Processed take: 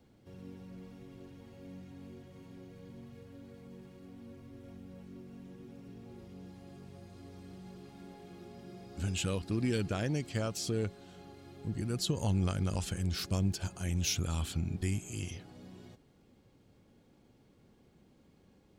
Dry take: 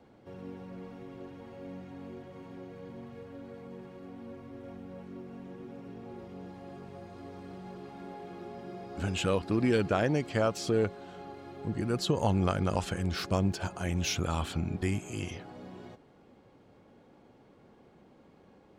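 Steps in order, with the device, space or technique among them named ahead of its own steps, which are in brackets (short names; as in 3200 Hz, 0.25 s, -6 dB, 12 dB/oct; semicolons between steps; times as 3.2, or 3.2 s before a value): smiley-face EQ (low shelf 97 Hz +5.5 dB; bell 850 Hz -9 dB 2.7 oct; high shelf 5000 Hz +8 dB); gain -2.5 dB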